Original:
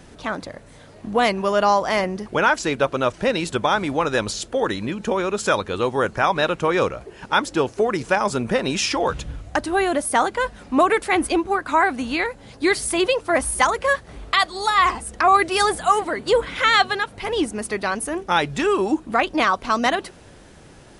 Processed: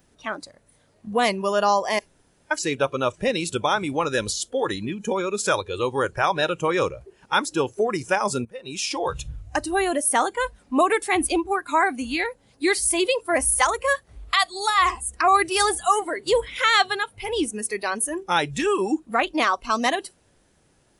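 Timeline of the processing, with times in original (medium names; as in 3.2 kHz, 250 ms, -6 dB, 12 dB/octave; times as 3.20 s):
1.99–2.51 s: room tone
8.45–9.19 s: fade in, from -19 dB
whole clip: spectral noise reduction 14 dB; treble shelf 8.2 kHz +11.5 dB; trim -2.5 dB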